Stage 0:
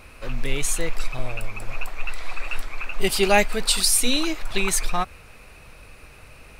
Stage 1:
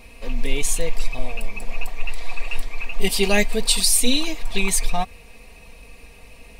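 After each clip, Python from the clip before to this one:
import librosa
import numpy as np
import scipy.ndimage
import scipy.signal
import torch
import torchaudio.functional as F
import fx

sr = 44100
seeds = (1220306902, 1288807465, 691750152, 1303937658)

y = fx.peak_eq(x, sr, hz=1400.0, db=-14.5, octaves=0.39)
y = y + 0.65 * np.pad(y, (int(4.3 * sr / 1000.0), 0))[:len(y)]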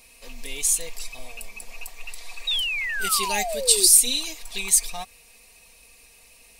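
y = fx.low_shelf(x, sr, hz=450.0, db=-8.5)
y = fx.spec_paint(y, sr, seeds[0], shape='fall', start_s=2.47, length_s=1.4, low_hz=350.0, high_hz=3900.0, level_db=-21.0)
y = fx.bass_treble(y, sr, bass_db=-1, treble_db=13)
y = F.gain(torch.from_numpy(y), -8.0).numpy()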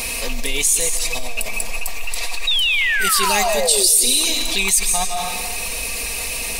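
y = fx.rev_freeverb(x, sr, rt60_s=0.95, hf_ratio=0.85, predelay_ms=110, drr_db=8.5)
y = fx.env_flatten(y, sr, amount_pct=70)
y = F.gain(torch.from_numpy(y), -1.5).numpy()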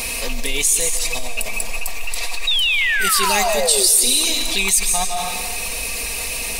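y = fx.echo_thinned(x, sr, ms=151, feedback_pct=75, hz=420.0, wet_db=-20.5)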